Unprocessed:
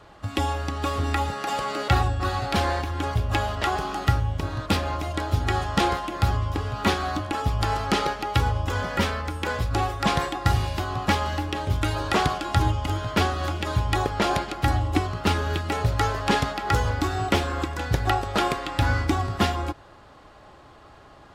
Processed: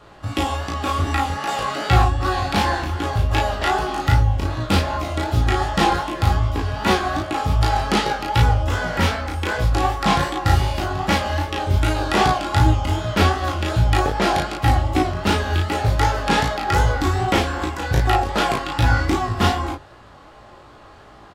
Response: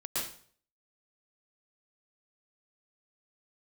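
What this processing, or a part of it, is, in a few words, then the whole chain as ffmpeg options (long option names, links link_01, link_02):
double-tracked vocal: -filter_complex "[0:a]asplit=2[link_01][link_02];[link_02]adelay=35,volume=-2.5dB[link_03];[link_01][link_03]amix=inputs=2:normalize=0,flanger=delay=16:depth=6.4:speed=2.6,volume=5.5dB"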